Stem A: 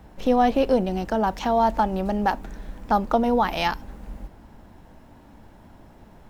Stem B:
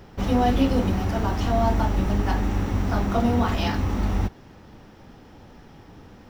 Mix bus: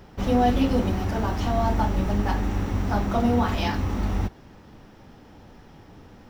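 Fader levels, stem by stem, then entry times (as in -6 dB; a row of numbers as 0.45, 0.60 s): -10.5, -1.5 dB; 0.00, 0.00 s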